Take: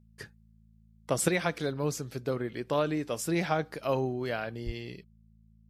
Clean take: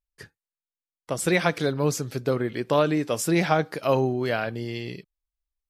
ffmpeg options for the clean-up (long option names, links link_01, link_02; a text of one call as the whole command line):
ffmpeg -i in.wav -filter_complex "[0:a]bandreject=frequency=54.9:width_type=h:width=4,bandreject=frequency=109.8:width_type=h:width=4,bandreject=frequency=164.7:width_type=h:width=4,bandreject=frequency=219.6:width_type=h:width=4,asplit=3[link_01][link_02][link_03];[link_01]afade=type=out:start_time=4.65:duration=0.02[link_04];[link_02]highpass=frequency=140:width=0.5412,highpass=frequency=140:width=1.3066,afade=type=in:start_time=4.65:duration=0.02,afade=type=out:start_time=4.77:duration=0.02[link_05];[link_03]afade=type=in:start_time=4.77:duration=0.02[link_06];[link_04][link_05][link_06]amix=inputs=3:normalize=0,asetnsamples=nb_out_samples=441:pad=0,asendcmd='1.28 volume volume 7dB',volume=0dB" out.wav